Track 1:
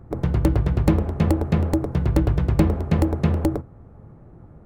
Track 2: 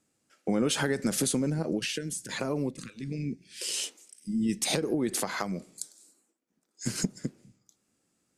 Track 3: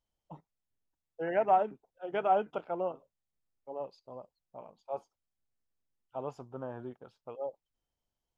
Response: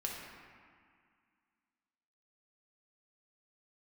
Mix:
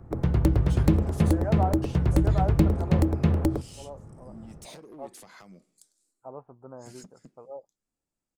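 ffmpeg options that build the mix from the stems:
-filter_complex "[0:a]acrossover=split=410|3000[link_01][link_02][link_03];[link_02]acompressor=threshold=-31dB:ratio=6[link_04];[link_01][link_04][link_03]amix=inputs=3:normalize=0,volume=-2dB[link_05];[1:a]asoftclip=type=hard:threshold=-25.5dB,volume=-16.5dB[link_06];[2:a]lowpass=frequency=1500:width=0.5412,lowpass=frequency=1500:width=1.3066,adelay=100,volume=-3.5dB[link_07];[link_05][link_06][link_07]amix=inputs=3:normalize=0"

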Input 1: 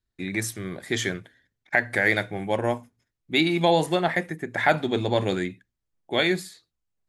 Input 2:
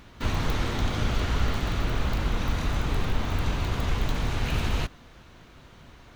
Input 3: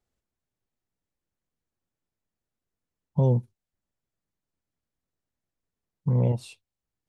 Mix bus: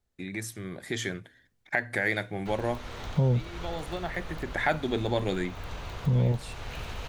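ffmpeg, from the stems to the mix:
ffmpeg -i stem1.wav -i stem2.wav -i stem3.wav -filter_complex "[0:a]volume=-4dB[link_01];[1:a]lowshelf=frequency=380:width_type=q:width=1.5:gain=-6,adelay=2250,volume=-13dB[link_02];[2:a]volume=-1dB,asplit=2[link_03][link_04];[link_04]apad=whole_len=312663[link_05];[link_01][link_05]sidechaincompress=threshold=-40dB:ratio=8:attack=16:release=838[link_06];[link_06][link_02][link_03]amix=inputs=3:normalize=0,dynaudnorm=framelen=280:gausssize=7:maxgain=8.5dB,lowshelf=frequency=140:gain=3,acompressor=threshold=-39dB:ratio=1.5" out.wav

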